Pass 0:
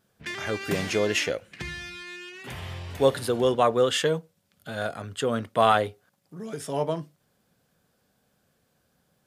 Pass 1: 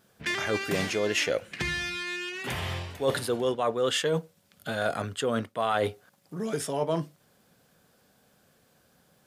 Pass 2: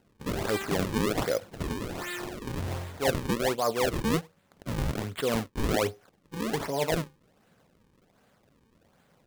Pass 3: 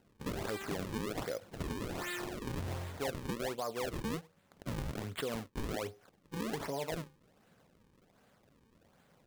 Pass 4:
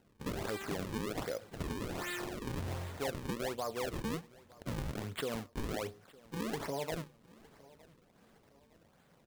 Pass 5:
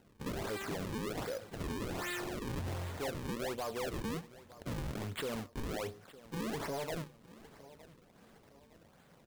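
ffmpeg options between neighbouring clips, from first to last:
-af "lowshelf=f=140:g=-5.5,areverse,acompressor=threshold=0.0316:ratio=8,areverse,volume=2.11"
-af "equalizer=f=2700:w=4.4:g=-8.5,acrusher=samples=37:mix=1:aa=0.000001:lfo=1:lforange=59.2:lforate=1.3"
-af "acompressor=threshold=0.0251:ratio=6,volume=0.75"
-af "aecho=1:1:911|1822|2733:0.075|0.0315|0.0132"
-af "asoftclip=type=tanh:threshold=0.0141,volume=1.5"

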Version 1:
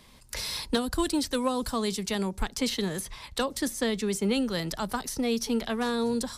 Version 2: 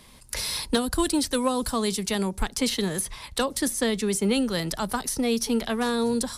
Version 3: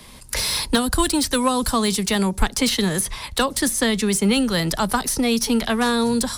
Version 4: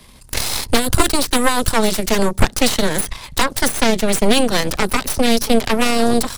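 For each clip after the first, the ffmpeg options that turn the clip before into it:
-af "equalizer=f=10000:w=2.3:g=6.5,volume=1.41"
-filter_complex "[0:a]acrossover=split=250|690|2300[s0][s1][s2][s3];[s1]acompressor=threshold=0.0178:ratio=6[s4];[s3]asoftclip=type=tanh:threshold=0.0631[s5];[s0][s4][s2][s5]amix=inputs=4:normalize=0,volume=2.51"
-af "lowshelf=f=150:g=4.5,aeval=exprs='0.708*(cos(1*acos(clip(val(0)/0.708,-1,1)))-cos(1*PI/2))+0.0501*(cos(3*acos(clip(val(0)/0.708,-1,1)))-cos(3*PI/2))+0.316*(cos(6*acos(clip(val(0)/0.708,-1,1)))-cos(6*PI/2))':c=same,volume=0.891"

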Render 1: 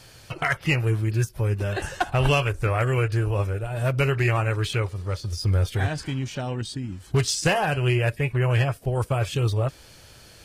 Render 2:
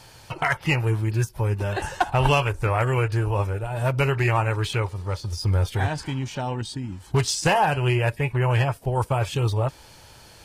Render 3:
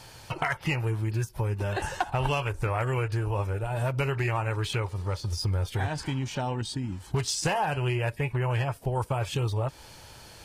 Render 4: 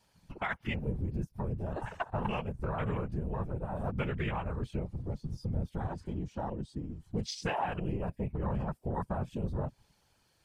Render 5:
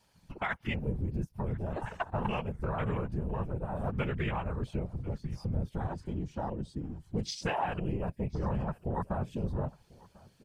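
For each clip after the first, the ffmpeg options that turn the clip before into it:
-af "equalizer=f=900:t=o:w=0.35:g=10.5"
-af "acompressor=threshold=0.0501:ratio=3"
-af "afwtdn=0.0251,afftfilt=real='hypot(re,im)*cos(2*PI*random(0))':imag='hypot(re,im)*sin(2*PI*random(1))':win_size=512:overlap=0.75"
-af "aecho=1:1:1045|2090:0.0668|0.012,volume=1.12"

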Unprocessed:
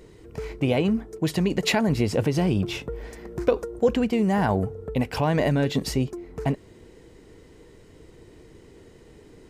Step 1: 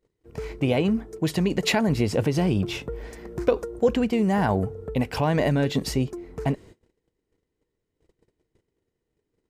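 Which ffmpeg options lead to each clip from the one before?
-af "agate=range=0.0316:threshold=0.00631:ratio=16:detection=peak"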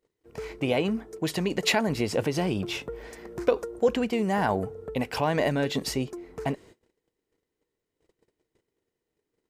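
-af "lowshelf=f=210:g=-11"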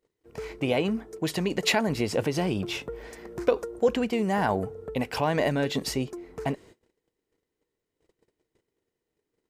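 -af anull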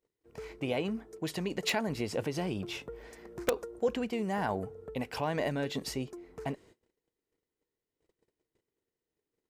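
-af "aeval=exprs='(mod(3.55*val(0)+1,2)-1)/3.55':c=same,volume=0.447"

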